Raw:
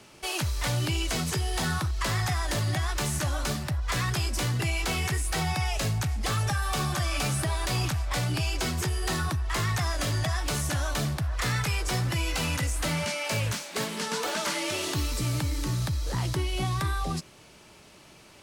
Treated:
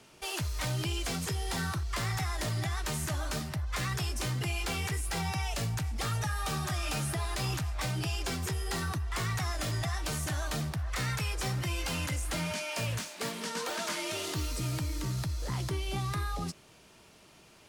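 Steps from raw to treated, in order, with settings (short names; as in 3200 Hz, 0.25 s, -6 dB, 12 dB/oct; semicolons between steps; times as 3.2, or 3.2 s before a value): speed mistake 24 fps film run at 25 fps; gain -5 dB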